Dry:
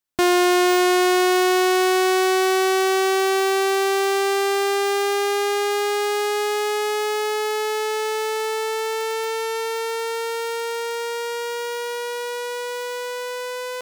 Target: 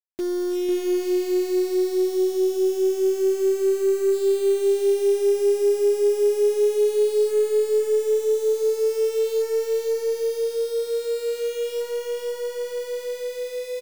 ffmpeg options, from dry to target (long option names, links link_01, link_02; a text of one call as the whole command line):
ffmpeg -i in.wav -af "highpass=frequency=64:width=0.5412,highpass=frequency=64:width=1.3066,aemphasis=mode=reproduction:type=50fm,asoftclip=type=tanh:threshold=-26.5dB,lowpass=frequency=420:width_type=q:width=4.9,acrusher=bits=6:dc=4:mix=0:aa=0.000001,aecho=1:1:498:0.596,volume=-5.5dB" out.wav